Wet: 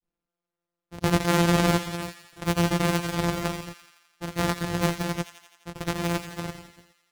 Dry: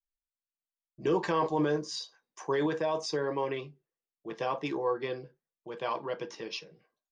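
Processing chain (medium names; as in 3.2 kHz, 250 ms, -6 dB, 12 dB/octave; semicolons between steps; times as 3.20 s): sorted samples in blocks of 256 samples; granulator, pitch spread up and down by 0 st; feedback echo behind a high-pass 85 ms, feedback 65%, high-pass 1.5 kHz, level -10 dB; trim +7.5 dB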